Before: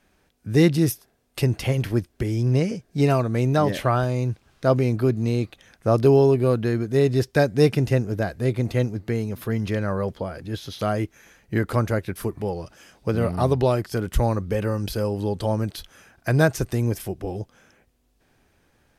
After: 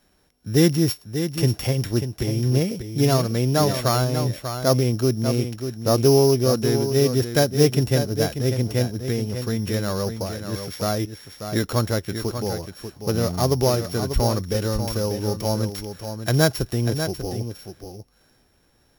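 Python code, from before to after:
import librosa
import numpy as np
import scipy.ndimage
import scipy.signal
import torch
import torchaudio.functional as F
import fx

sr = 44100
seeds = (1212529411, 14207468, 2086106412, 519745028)

p1 = np.r_[np.sort(x[:len(x) // 8 * 8].reshape(-1, 8), axis=1).ravel(), x[len(x) // 8 * 8:]]
p2 = fx.high_shelf(p1, sr, hz=6200.0, db=4.0)
y = p2 + fx.echo_single(p2, sr, ms=591, db=-8.5, dry=0)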